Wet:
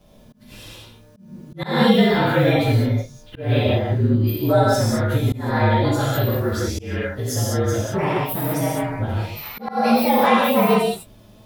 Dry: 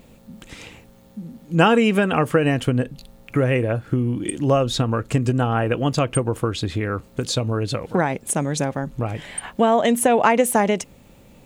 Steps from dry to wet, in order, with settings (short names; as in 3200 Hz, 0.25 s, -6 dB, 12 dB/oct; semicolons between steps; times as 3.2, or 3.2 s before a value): inharmonic rescaling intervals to 113%; non-linear reverb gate 0.23 s flat, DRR -6 dB; auto swell 0.227 s; gain -2.5 dB